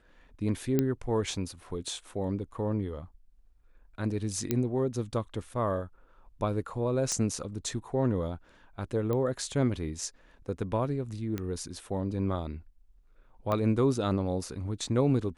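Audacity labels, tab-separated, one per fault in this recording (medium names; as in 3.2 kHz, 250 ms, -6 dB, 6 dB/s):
0.790000	0.790000	pop -13 dBFS
4.510000	4.510000	pop -13 dBFS
7.120000	7.120000	pop -17 dBFS
9.130000	9.130000	pop -20 dBFS
11.380000	11.380000	pop -20 dBFS
13.520000	13.520000	pop -18 dBFS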